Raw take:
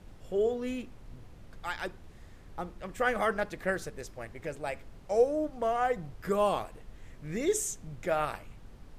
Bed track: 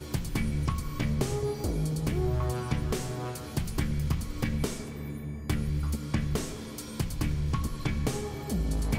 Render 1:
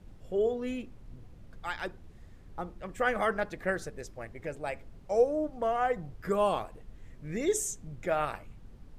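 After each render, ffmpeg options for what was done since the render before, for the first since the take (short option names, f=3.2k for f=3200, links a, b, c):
-af "afftdn=nr=6:nf=-52"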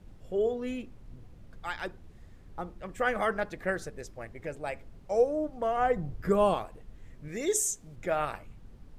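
-filter_complex "[0:a]asettb=1/sr,asplit=3[a][b][c];[a]atrim=end=5.774[d];[b]atrim=start=5.77:end=6.54,asetpts=PTS-STARTPTS,afade=t=in:d=0.004:c=qsin,afade=t=out:st=0.766:d=0.004:c=qsin,lowshelf=f=460:g=7[e];[c]atrim=start=6.536[f];[d][e]acrossfade=d=0.004:c1=hsin:c2=qsin[g];[g][f]acrossfade=d=0.004:c1=qsin:c2=hsin,asettb=1/sr,asplit=3[h][i][j];[h]atrim=end=7.284[k];[i]atrim=start=7.28:end=7.96,asetpts=PTS-STARTPTS,afade=t=in:d=0.004:c=qsin,afade=t=out:st=0.676:d=0.004:c=qsin,bass=f=250:g=-7,treble=f=4k:g=5[l];[j]atrim=start=7.956[m];[k][l]acrossfade=d=0.004:c1=hsin:c2=qsin[n];[n][m]acrossfade=d=0.004:c1=qsin:c2=hsin"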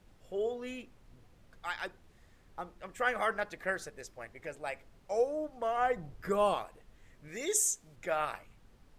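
-af "lowshelf=f=440:g=-11.5"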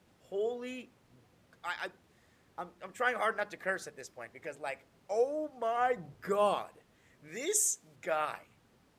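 -af "highpass=110,bandreject=f=50:t=h:w=6,bandreject=f=100:t=h:w=6,bandreject=f=150:t=h:w=6,bandreject=f=200:t=h:w=6"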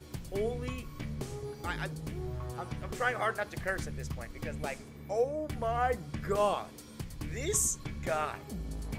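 -filter_complex "[1:a]volume=-10dB[a];[0:a][a]amix=inputs=2:normalize=0"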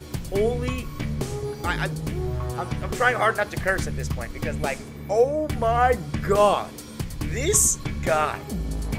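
-af "volume=10.5dB"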